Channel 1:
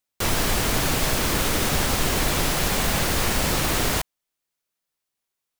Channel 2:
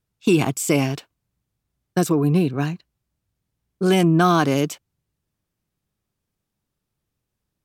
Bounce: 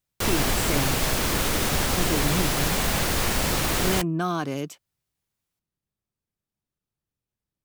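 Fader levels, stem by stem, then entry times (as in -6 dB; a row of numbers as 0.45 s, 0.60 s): -1.5 dB, -10.0 dB; 0.00 s, 0.00 s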